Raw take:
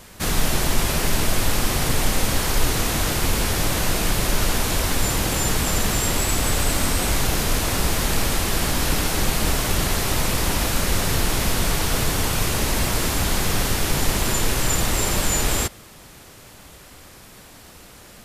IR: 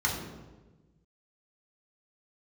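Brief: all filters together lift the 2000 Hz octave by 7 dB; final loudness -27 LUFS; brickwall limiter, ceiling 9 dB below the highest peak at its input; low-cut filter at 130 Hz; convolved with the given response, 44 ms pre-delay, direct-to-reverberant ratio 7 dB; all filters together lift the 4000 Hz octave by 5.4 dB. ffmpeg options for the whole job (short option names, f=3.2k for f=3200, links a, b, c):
-filter_complex "[0:a]highpass=130,equalizer=f=2k:t=o:g=7.5,equalizer=f=4k:t=o:g=4.5,alimiter=limit=-16.5dB:level=0:latency=1,asplit=2[a][b];[1:a]atrim=start_sample=2205,adelay=44[c];[b][c]afir=irnorm=-1:irlink=0,volume=-16.5dB[d];[a][d]amix=inputs=2:normalize=0,volume=-4dB"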